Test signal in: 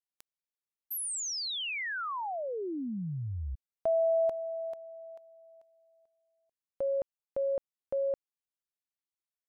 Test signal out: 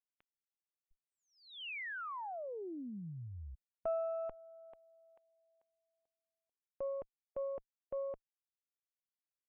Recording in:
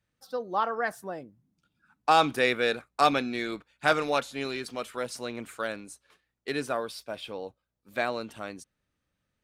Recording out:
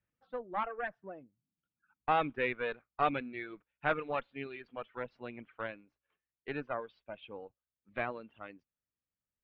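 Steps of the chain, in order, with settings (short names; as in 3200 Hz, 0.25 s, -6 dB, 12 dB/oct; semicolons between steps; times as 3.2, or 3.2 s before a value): added harmonics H 8 -23 dB, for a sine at -8.5 dBFS; steep low-pass 3000 Hz 36 dB/oct; reverb removal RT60 1.6 s; gain -7.5 dB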